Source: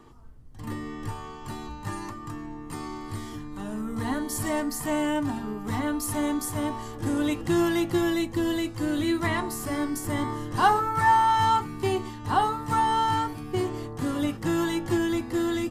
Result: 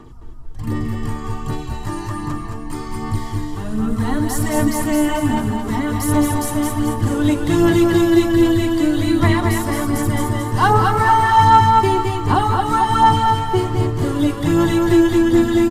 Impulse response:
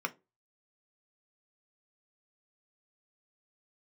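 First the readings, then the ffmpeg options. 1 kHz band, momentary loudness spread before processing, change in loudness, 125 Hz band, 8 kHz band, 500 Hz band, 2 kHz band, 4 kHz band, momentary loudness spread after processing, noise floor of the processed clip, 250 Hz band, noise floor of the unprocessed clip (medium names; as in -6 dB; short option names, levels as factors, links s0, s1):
+9.0 dB, 14 LU, +10.0 dB, +14.0 dB, +7.5 dB, +10.0 dB, +8.0 dB, +7.5 dB, 13 LU, -28 dBFS, +10.5 dB, -40 dBFS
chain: -filter_complex "[0:a]asplit=2[s0][s1];[s1]aecho=0:1:222|444|666|888|1110|1332:0.473|0.222|0.105|0.0491|0.0231|0.0109[s2];[s0][s2]amix=inputs=2:normalize=0,aphaser=in_gain=1:out_gain=1:delay=3.2:decay=0.43:speed=1.3:type=sinusoidal,lowshelf=f=200:g=6,asplit=2[s3][s4];[s4]aecho=0:1:213:0.501[s5];[s3][s5]amix=inputs=2:normalize=0,volume=1.68"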